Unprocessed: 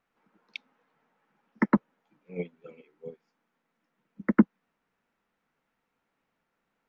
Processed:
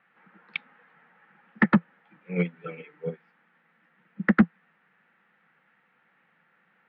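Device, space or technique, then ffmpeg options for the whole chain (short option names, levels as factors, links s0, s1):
overdrive pedal into a guitar cabinet: -filter_complex "[0:a]asettb=1/sr,asplit=3[s0][s1][s2];[s0]atrim=end=2.554[s3];[s1]atrim=start=2.55:end=3.1,asetpts=PTS-STARTPTS,afade=t=in:d=0.004:c=qsin,afade=t=out:st=0.546:d=0.004:c=qsin,aecho=1:1:6.7:0.75,atrim=end_sample=24255[s4];[s2]atrim=start=3.096[s5];[s3][s4]acrossfade=d=0.004:c1=hsin:c2=qsin[s6];[s6][s5]acrossfade=d=0.004:c1=qsin:c2=hsin,asplit=2[s7][s8];[s8]highpass=f=720:p=1,volume=20,asoftclip=type=tanh:threshold=0.531[s9];[s7][s9]amix=inputs=2:normalize=0,lowpass=f=1200:p=1,volume=0.501,highpass=86,equalizer=f=170:t=q:w=4:g=8,equalizer=f=280:t=q:w=4:g=-9,equalizer=f=420:t=q:w=4:g=-8,equalizer=f=640:t=q:w=4:g=-10,equalizer=f=1000:t=q:w=4:g=-8,equalizer=f=1800:t=q:w=4:g=6,lowpass=f=3400:w=0.5412,lowpass=f=3400:w=1.3066"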